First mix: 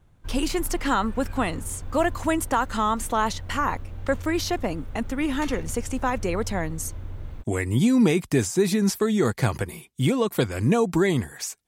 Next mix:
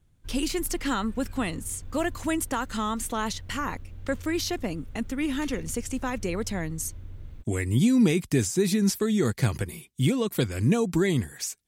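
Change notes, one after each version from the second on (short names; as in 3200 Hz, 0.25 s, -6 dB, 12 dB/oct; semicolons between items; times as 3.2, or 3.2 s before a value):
background -5.5 dB; master: add bell 860 Hz -8.5 dB 1.9 oct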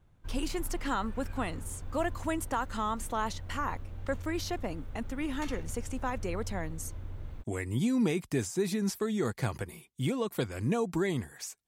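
speech -9.0 dB; master: add bell 860 Hz +8.5 dB 1.9 oct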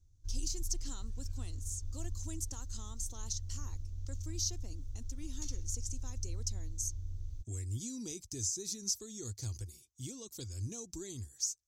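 master: add EQ curve 100 Hz 0 dB, 160 Hz -21 dB, 320 Hz -13 dB, 610 Hz -25 dB, 2000 Hz -25 dB, 3100 Hz -14 dB, 6200 Hz +11 dB, 9400 Hz -6 dB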